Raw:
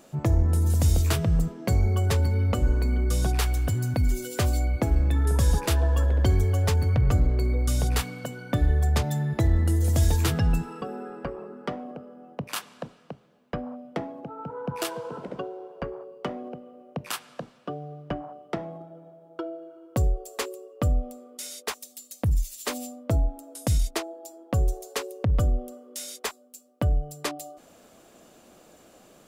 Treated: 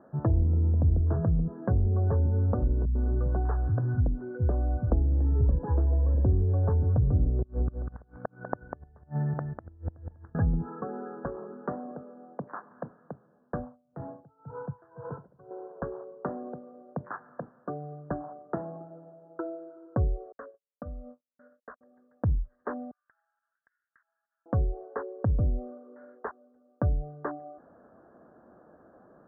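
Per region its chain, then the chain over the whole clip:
0:02.85–0:06.15: parametric band 110 Hz +2.5 dB 0.69 octaves + multiband delay without the direct sound lows, highs 100 ms, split 180 Hz
0:07.40–0:10.35: transient designer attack +6 dB, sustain −9 dB + gate with flip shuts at −15 dBFS, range −32 dB + single-tap delay 197 ms −6.5 dB
0:12.02–0:12.71: high-pass filter 180 Hz + dynamic equaliser 1,700 Hz, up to −5 dB, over −49 dBFS
0:13.59–0:15.51: low shelf with overshoot 170 Hz +10.5 dB, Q 1.5 + tremolo with a sine in dB 2 Hz, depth 26 dB
0:20.32–0:21.81: phaser with its sweep stopped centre 570 Hz, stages 8 + noise gate −41 dBFS, range −56 dB + downward compressor 2 to 1, threshold −40 dBFS
0:22.91–0:24.46: Butterworth high-pass 1,600 Hz + high-shelf EQ 12,000 Hz +5.5 dB + downward compressor 12 to 1, threshold −47 dBFS
whole clip: Butterworth low-pass 1,700 Hz 96 dB per octave; treble cut that deepens with the level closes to 410 Hz, closed at −17.5 dBFS; high-pass filter 49 Hz; level −1.5 dB

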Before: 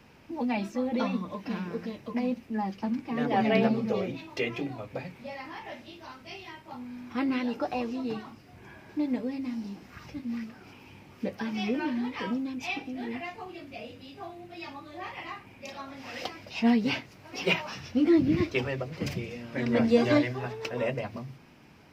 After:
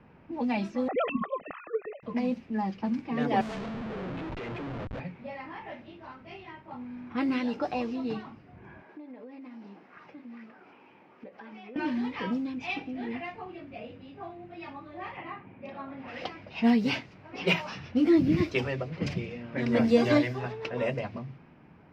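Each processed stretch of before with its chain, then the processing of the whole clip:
0:00.88–0:02.03: three sine waves on the formant tracks + comb filter 1.6 ms, depth 76%
0:03.41–0:05.00: downward compressor 4 to 1, threshold −32 dBFS + comparator with hysteresis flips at −43.5 dBFS + high-frequency loss of the air 63 metres
0:08.82–0:11.76: high-pass filter 370 Hz + downward compressor 12 to 1, threshold −41 dBFS
0:15.17–0:16.08: band-pass filter 130–4,200 Hz + spectral tilt −1.5 dB per octave
whole clip: low-pass that shuts in the quiet parts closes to 1,600 Hz, open at −22.5 dBFS; parametric band 170 Hz +5 dB 0.28 octaves

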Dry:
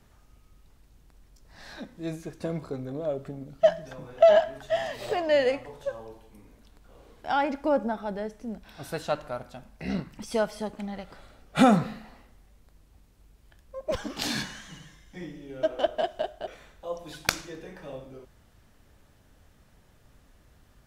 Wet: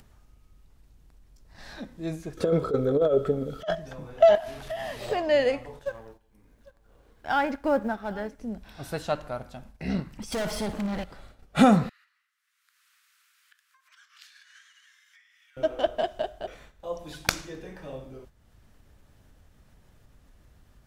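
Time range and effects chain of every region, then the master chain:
0:02.37–0:03.75: hollow resonant body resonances 460/1,300/3,300 Hz, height 18 dB, ringing for 35 ms + compressor whose output falls as the input rises −22 dBFS, ratio −0.5 + one half of a high-frequency compander encoder only
0:04.35–0:05.01: linear delta modulator 64 kbit/s, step −37 dBFS + parametric band 7,800 Hz −7 dB 0.9 octaves + downward compressor 8 to 1, threshold −29 dBFS
0:05.79–0:08.39: mu-law and A-law mismatch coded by A + parametric band 1,600 Hz +6.5 dB 0.4 octaves + single-tap delay 797 ms −22 dB
0:10.32–0:11.04: hard clipping −27.5 dBFS + leveller curve on the samples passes 3 + flutter between parallel walls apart 10 metres, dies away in 0.31 s
0:11.89–0:15.57: high-shelf EQ 2,100 Hz −7.5 dB + downward compressor, threshold −45 dBFS + Butterworth high-pass 1,300 Hz 48 dB per octave
whole clip: noise gate −51 dBFS, range −9 dB; low-shelf EQ 160 Hz +5 dB; upward compression, threshold −47 dBFS

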